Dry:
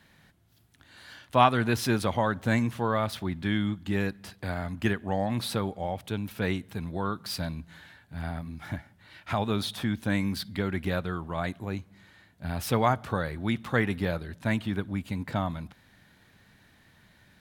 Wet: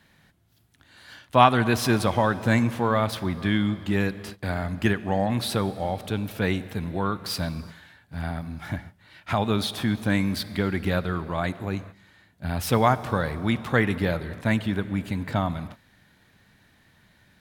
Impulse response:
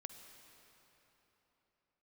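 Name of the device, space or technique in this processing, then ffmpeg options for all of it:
keyed gated reverb: -filter_complex "[0:a]asplit=3[link_01][link_02][link_03];[1:a]atrim=start_sample=2205[link_04];[link_02][link_04]afir=irnorm=-1:irlink=0[link_05];[link_03]apad=whole_len=767739[link_06];[link_05][link_06]sidechaingate=range=-33dB:threshold=-46dB:ratio=16:detection=peak,volume=1dB[link_07];[link_01][link_07]amix=inputs=2:normalize=0"

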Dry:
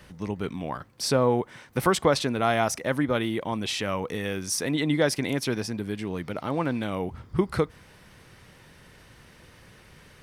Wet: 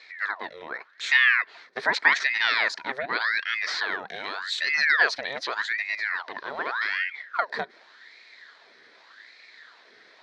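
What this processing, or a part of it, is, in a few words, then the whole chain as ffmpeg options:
voice changer toy: -af "aeval=exprs='val(0)*sin(2*PI*1300*n/s+1300*0.8/0.85*sin(2*PI*0.85*n/s))':channel_layout=same,highpass=550,equalizer=frequency=550:width_type=q:width=4:gain=-5,equalizer=frequency=810:width_type=q:width=4:gain=-8,equalizer=frequency=1200:width_type=q:width=4:gain=-5,equalizer=frequency=1800:width_type=q:width=4:gain=7,equalizer=frequency=2800:width_type=q:width=4:gain=-10,equalizer=frequency=4100:width_type=q:width=4:gain=7,lowpass=frequency=4900:width=0.5412,lowpass=frequency=4900:width=1.3066,volume=4dB"

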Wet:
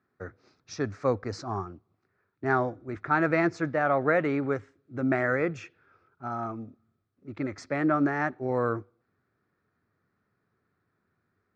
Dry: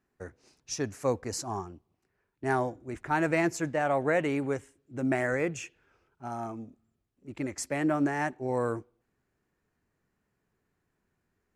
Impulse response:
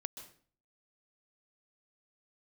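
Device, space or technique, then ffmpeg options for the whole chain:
guitar cabinet: -af "highpass=96,equalizer=frequency=100:width_type=q:width=4:gain=7,equalizer=frequency=910:width_type=q:width=4:gain=-4,equalizer=frequency=1300:width_type=q:width=4:gain=9,equalizer=frequency=2900:width_type=q:width=4:gain=-10,lowpass=frequency=4500:width=0.5412,lowpass=frequency=4500:width=1.3066,volume=2dB"

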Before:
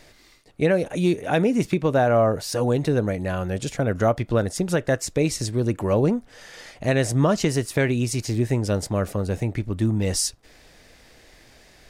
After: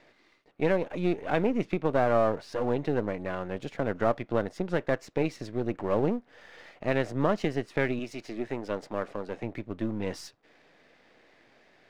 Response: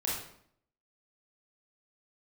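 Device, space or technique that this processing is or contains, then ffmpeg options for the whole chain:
crystal radio: -filter_complex "[0:a]asettb=1/sr,asplit=3[link_01][link_02][link_03];[link_01]atrim=end=7.994[link_04];[link_02]atrim=start=7.99:end=9.43,asetpts=PTS-STARTPTS,afade=type=in:duration=0.004:curve=qsin,afade=type=out:start_time=1.436:duration=0.004:curve=qsin,highpass=frequency=240:poles=1[link_05];[link_03]atrim=start=9.426[link_06];[link_04][link_05]acrossfade=duration=0.004:curve1=hsin:curve2=qsin[link_07];[link_07][link_06]acrossfade=duration=0.004:curve1=qsin:curve2=hsin,highpass=210,lowpass=2700,aeval=exprs='if(lt(val(0),0),0.447*val(0),val(0))':channel_layout=same,volume=-3dB"

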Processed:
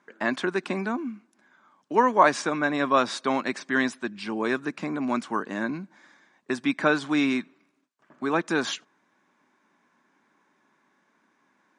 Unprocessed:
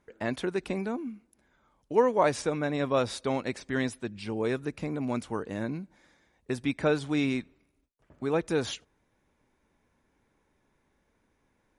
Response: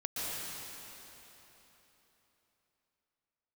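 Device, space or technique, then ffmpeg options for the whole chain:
television speaker: -af "highpass=frequency=190:width=0.5412,highpass=frequency=190:width=1.3066,equalizer=frequency=480:width_type=q:width=4:gain=-9,equalizer=frequency=1100:width_type=q:width=4:gain=7,equalizer=frequency=1600:width_type=q:width=4:gain=6,lowpass=frequency=8200:width=0.5412,lowpass=frequency=8200:width=1.3066,volume=5dB"

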